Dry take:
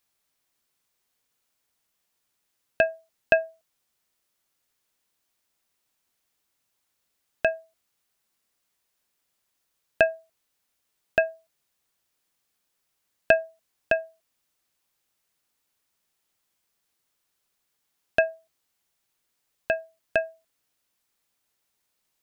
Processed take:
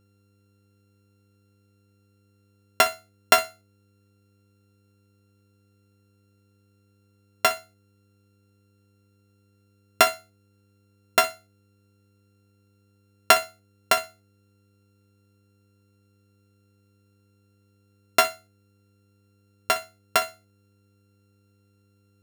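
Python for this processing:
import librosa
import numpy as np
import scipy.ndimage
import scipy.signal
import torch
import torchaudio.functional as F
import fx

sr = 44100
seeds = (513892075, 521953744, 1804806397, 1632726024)

y = np.r_[np.sort(x[:len(x) // 32 * 32].reshape(-1, 32), axis=1).ravel(), x[len(x) // 32 * 32:]]
y = fx.room_flutter(y, sr, wall_m=10.5, rt60_s=0.22)
y = fx.dmg_buzz(y, sr, base_hz=100.0, harmonics=5, level_db=-66.0, tilt_db=-6, odd_only=False)
y = F.gain(torch.from_numpy(y), 2.0).numpy()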